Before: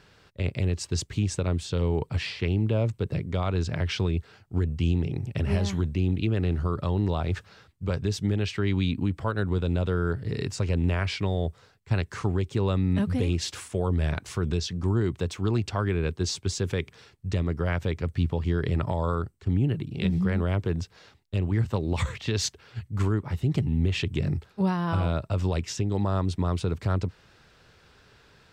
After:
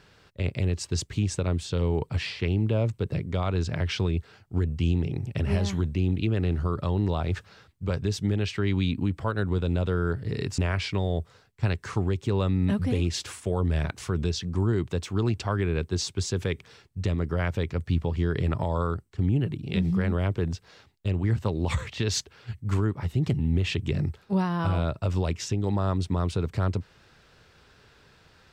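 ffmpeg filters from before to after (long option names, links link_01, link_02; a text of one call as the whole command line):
ffmpeg -i in.wav -filter_complex "[0:a]asplit=2[link_01][link_02];[link_01]atrim=end=10.582[link_03];[link_02]atrim=start=10.858[link_04];[link_03][link_04]acrossfade=duration=0.004:curve1=hsin:curve2=hsin" out.wav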